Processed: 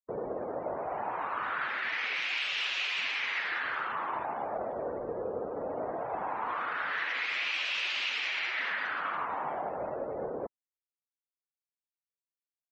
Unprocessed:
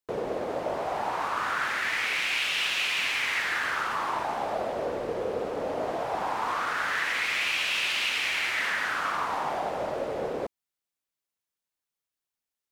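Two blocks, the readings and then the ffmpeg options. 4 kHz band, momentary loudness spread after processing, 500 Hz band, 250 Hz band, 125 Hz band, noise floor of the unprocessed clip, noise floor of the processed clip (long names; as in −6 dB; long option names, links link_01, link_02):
−5.0 dB, 6 LU, −4.5 dB, −5.0 dB, −6.0 dB, below −85 dBFS, below −85 dBFS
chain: -af "afftdn=noise_reduction=32:noise_floor=-40,volume=-4.5dB"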